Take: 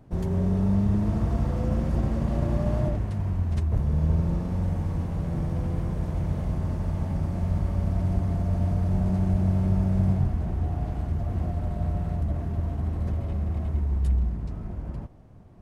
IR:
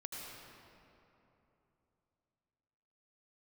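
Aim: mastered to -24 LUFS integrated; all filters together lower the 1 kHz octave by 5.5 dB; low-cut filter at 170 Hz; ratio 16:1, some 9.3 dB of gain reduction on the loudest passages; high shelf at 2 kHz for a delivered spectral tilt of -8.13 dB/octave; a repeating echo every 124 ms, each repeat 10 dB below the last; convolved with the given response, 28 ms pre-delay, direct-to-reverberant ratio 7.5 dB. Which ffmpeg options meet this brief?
-filter_complex "[0:a]highpass=170,equalizer=f=1000:t=o:g=-7,highshelf=f=2000:g=-5.5,acompressor=threshold=0.0224:ratio=16,aecho=1:1:124|248|372|496:0.316|0.101|0.0324|0.0104,asplit=2[s0][s1];[1:a]atrim=start_sample=2205,adelay=28[s2];[s1][s2]afir=irnorm=-1:irlink=0,volume=0.473[s3];[s0][s3]amix=inputs=2:normalize=0,volume=4.73"

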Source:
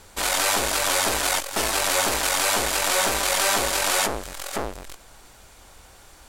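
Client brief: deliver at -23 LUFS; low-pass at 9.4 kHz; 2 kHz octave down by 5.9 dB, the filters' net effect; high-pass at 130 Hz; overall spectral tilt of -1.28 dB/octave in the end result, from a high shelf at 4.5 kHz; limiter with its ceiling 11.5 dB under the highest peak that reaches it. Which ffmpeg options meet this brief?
-af "highpass=130,lowpass=9400,equalizer=f=2000:t=o:g=-6.5,highshelf=f=4500:g=-7,volume=3.76,alimiter=limit=0.211:level=0:latency=1"

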